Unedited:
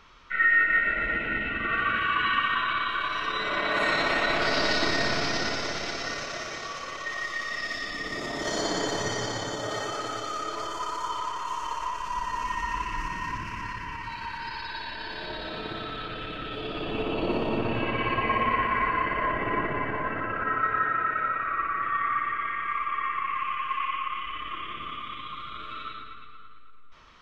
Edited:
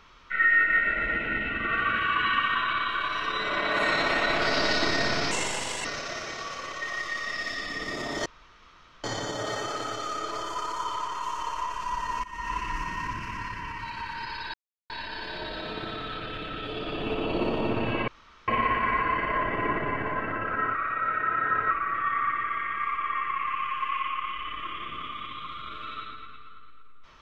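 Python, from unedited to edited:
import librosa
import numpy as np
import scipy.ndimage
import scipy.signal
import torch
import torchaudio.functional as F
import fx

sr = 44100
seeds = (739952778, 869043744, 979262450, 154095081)

y = fx.edit(x, sr, fx.speed_span(start_s=5.31, length_s=0.78, speed=1.45),
    fx.room_tone_fill(start_s=8.5, length_s=0.78),
    fx.fade_in_from(start_s=12.48, length_s=0.31, floor_db=-18.5),
    fx.insert_silence(at_s=14.78, length_s=0.36),
    fx.room_tone_fill(start_s=17.96, length_s=0.4),
    fx.reverse_span(start_s=20.63, length_s=0.96), tone=tone)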